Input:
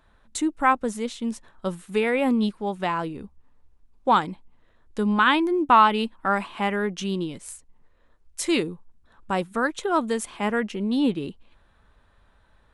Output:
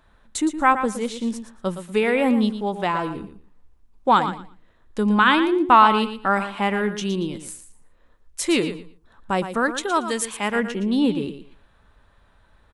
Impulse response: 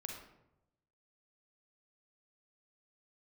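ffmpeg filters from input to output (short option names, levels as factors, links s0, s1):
-filter_complex "[0:a]asettb=1/sr,asplit=3[s0][s1][s2];[s0]atrim=end=9.764[s3];[s1]atrim=start=9.76:end=10.56,asetpts=PTS-STARTPTS,afade=t=in:d=0.004:c=qsin,afade=t=out:st=0.796:d=0.004:c=qsin,tiltshelf=f=1200:g=-5[s4];[s2]atrim=start=10.556[s5];[s3][s4]acrossfade=d=0.004:c1=hsin:c2=qsin[s6];[s6][s5]acrossfade=d=0.004:c1=qsin:c2=hsin,aecho=1:1:116|232|348:0.299|0.0567|0.0108,volume=1.33"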